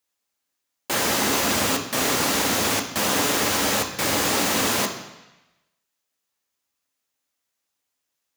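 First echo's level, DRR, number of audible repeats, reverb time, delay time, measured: no echo audible, 3.5 dB, no echo audible, 1.0 s, no echo audible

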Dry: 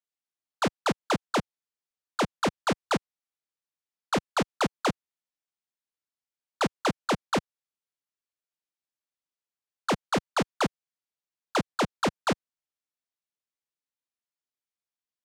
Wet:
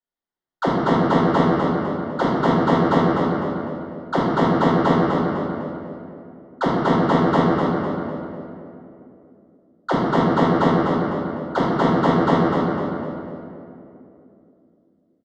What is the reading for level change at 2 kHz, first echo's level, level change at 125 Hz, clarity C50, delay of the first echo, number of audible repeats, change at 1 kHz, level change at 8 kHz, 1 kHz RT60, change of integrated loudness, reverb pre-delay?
+6.5 dB, −4.5 dB, +15.0 dB, −4.0 dB, 252 ms, 1, +10.5 dB, can't be measured, 2.5 s, +9.5 dB, 5 ms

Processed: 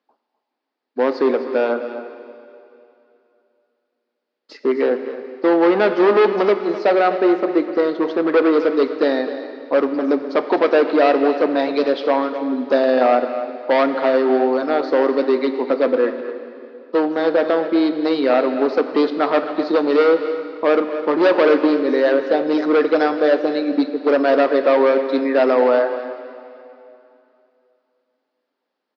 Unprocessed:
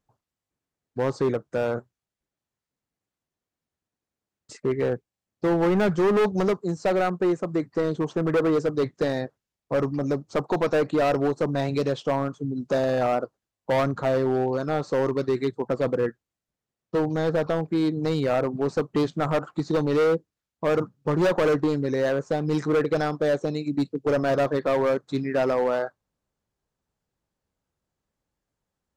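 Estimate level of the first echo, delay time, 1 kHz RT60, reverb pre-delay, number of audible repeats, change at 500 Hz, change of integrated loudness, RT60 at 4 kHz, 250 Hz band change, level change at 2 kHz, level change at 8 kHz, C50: −13.5 dB, 254 ms, 2.8 s, 5 ms, 1, +8.0 dB, +7.5 dB, 2.6 s, +7.0 dB, +8.5 dB, can't be measured, 8.5 dB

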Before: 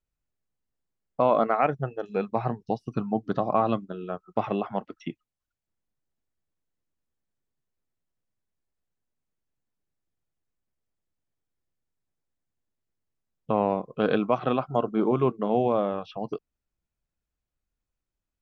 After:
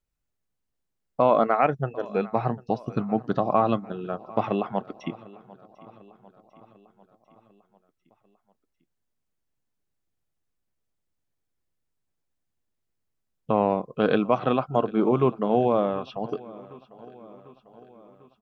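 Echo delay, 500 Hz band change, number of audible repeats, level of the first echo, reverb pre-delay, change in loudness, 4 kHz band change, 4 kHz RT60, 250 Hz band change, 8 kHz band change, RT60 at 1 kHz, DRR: 747 ms, +2.0 dB, 4, −21.0 dB, no reverb audible, +2.0 dB, +2.0 dB, no reverb audible, +2.0 dB, can't be measured, no reverb audible, no reverb audible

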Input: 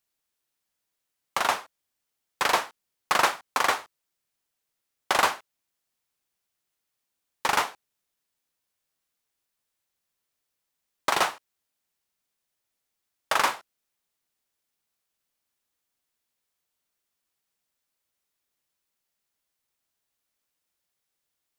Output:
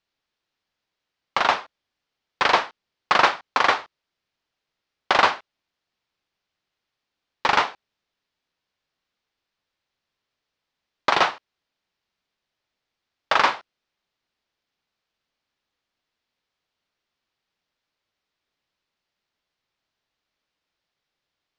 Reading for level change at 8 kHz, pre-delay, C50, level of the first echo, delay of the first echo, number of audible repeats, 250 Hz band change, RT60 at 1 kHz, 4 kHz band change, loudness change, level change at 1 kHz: −7.0 dB, no reverb audible, no reverb audible, no echo audible, no echo audible, no echo audible, +5.0 dB, no reverb audible, +4.5 dB, +4.5 dB, +5.0 dB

